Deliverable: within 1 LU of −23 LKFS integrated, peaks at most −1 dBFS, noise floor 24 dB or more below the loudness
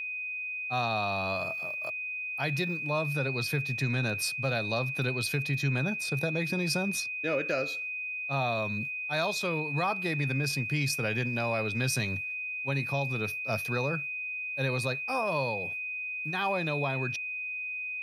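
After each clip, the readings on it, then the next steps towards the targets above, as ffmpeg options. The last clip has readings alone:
interfering tone 2,500 Hz; level of the tone −33 dBFS; integrated loudness −30.0 LKFS; sample peak −15.5 dBFS; target loudness −23.0 LKFS
→ -af "bandreject=frequency=2500:width=30"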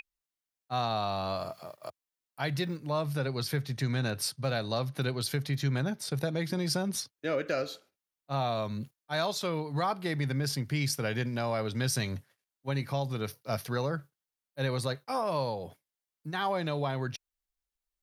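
interfering tone none found; integrated loudness −32.5 LKFS; sample peak −16.0 dBFS; target loudness −23.0 LKFS
→ -af "volume=9.5dB"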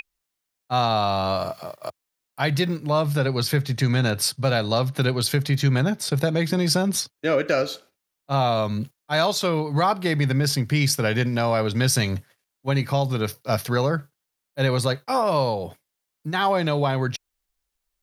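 integrated loudness −23.0 LKFS; sample peak −6.5 dBFS; background noise floor −82 dBFS

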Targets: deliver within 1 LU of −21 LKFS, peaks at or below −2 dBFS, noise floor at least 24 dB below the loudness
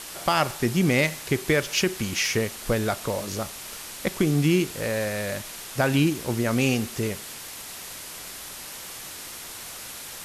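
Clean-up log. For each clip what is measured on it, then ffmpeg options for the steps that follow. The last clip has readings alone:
background noise floor −39 dBFS; target noise floor −51 dBFS; integrated loudness −26.5 LKFS; sample peak −9.5 dBFS; target loudness −21.0 LKFS
→ -af "afftdn=noise_reduction=12:noise_floor=-39"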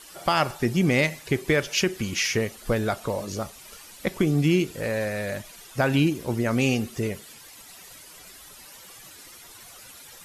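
background noise floor −47 dBFS; target noise floor −49 dBFS
→ -af "afftdn=noise_reduction=6:noise_floor=-47"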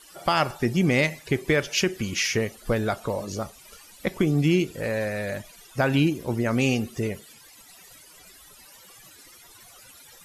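background noise floor −51 dBFS; integrated loudness −25.0 LKFS; sample peak −10.0 dBFS; target loudness −21.0 LKFS
→ -af "volume=4dB"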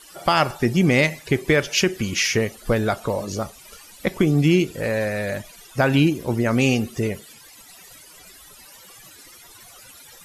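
integrated loudness −21.0 LKFS; sample peak −6.0 dBFS; background noise floor −47 dBFS

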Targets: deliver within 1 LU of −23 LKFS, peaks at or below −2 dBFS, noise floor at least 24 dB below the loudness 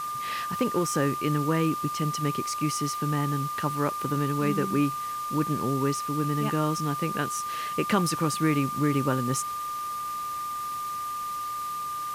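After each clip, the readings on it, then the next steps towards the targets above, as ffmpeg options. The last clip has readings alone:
interfering tone 1,200 Hz; level of the tone −30 dBFS; background noise floor −33 dBFS; target noise floor −52 dBFS; integrated loudness −27.5 LKFS; sample peak −12.0 dBFS; target loudness −23.0 LKFS
→ -af "bandreject=frequency=1200:width=30"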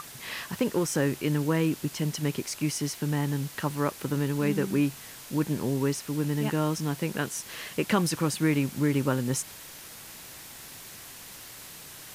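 interfering tone none found; background noise floor −45 dBFS; target noise floor −53 dBFS
→ -af "afftdn=noise_reduction=8:noise_floor=-45"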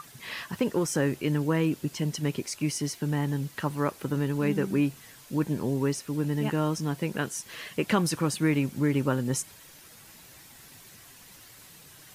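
background noise floor −51 dBFS; target noise floor −53 dBFS
→ -af "afftdn=noise_reduction=6:noise_floor=-51"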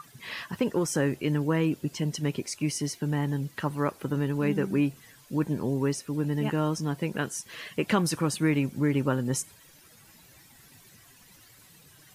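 background noise floor −56 dBFS; integrated loudness −28.5 LKFS; sample peak −13.0 dBFS; target loudness −23.0 LKFS
→ -af "volume=5.5dB"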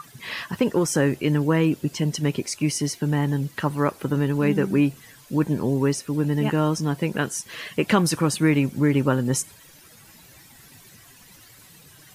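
integrated loudness −23.0 LKFS; sample peak −7.5 dBFS; background noise floor −50 dBFS

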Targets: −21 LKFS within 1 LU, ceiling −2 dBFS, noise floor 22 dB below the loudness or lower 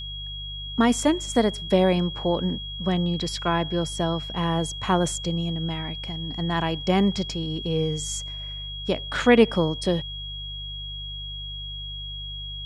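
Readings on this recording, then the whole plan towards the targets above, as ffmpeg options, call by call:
mains hum 50 Hz; hum harmonics up to 150 Hz; level of the hum −35 dBFS; interfering tone 3,300 Hz; level of the tone −34 dBFS; integrated loudness −25.5 LKFS; sample peak −4.0 dBFS; target loudness −21.0 LKFS
→ -af "bandreject=frequency=50:width_type=h:width=4,bandreject=frequency=100:width_type=h:width=4,bandreject=frequency=150:width_type=h:width=4"
-af "bandreject=frequency=3300:width=30"
-af "volume=4.5dB,alimiter=limit=-2dB:level=0:latency=1"

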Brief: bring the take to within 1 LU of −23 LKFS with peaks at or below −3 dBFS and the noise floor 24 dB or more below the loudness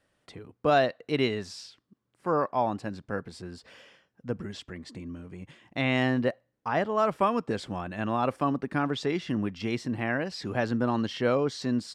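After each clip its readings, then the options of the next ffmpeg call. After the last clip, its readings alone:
integrated loudness −29.0 LKFS; sample peak −13.0 dBFS; target loudness −23.0 LKFS
→ -af "volume=6dB"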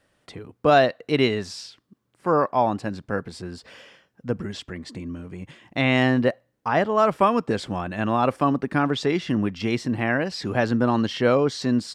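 integrated loudness −23.0 LKFS; sample peak −7.0 dBFS; background noise floor −72 dBFS

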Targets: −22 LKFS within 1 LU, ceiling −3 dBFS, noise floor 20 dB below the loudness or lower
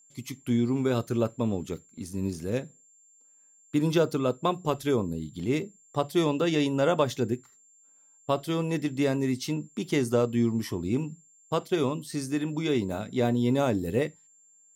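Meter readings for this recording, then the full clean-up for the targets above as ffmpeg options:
interfering tone 7,300 Hz; level of the tone −57 dBFS; integrated loudness −28.0 LKFS; sample peak −11.0 dBFS; target loudness −22.0 LKFS
→ -af "bandreject=frequency=7300:width=30"
-af "volume=6dB"

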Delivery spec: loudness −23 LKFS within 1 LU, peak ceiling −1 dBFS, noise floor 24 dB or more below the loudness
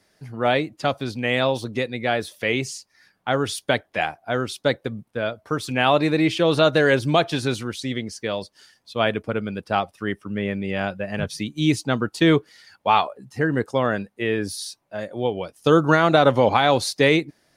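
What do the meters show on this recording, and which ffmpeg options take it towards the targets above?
integrated loudness −22.0 LKFS; sample peak −3.5 dBFS; target loudness −23.0 LKFS
→ -af "volume=-1dB"

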